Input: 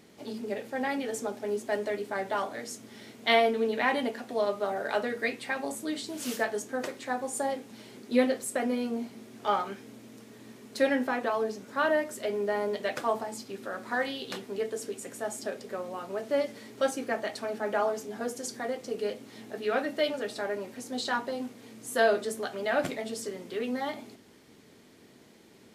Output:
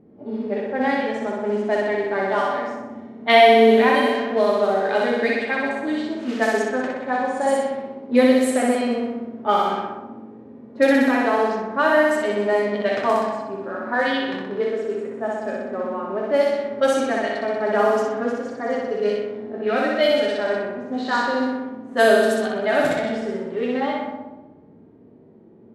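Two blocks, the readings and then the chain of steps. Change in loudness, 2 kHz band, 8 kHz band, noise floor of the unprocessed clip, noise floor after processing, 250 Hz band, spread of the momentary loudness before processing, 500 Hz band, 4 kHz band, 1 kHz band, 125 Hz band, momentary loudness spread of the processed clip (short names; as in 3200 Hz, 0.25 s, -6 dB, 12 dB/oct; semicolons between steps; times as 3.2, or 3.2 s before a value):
+10.5 dB, +9.5 dB, +1.0 dB, -56 dBFS, -47 dBFS, +11.5 dB, 12 LU, +10.5 dB, +8.0 dB, +10.5 dB, n/a, 12 LU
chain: flutter echo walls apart 10.7 m, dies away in 1.4 s; low-pass opened by the level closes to 510 Hz, open at -21 dBFS; harmonic-percussive split harmonic +8 dB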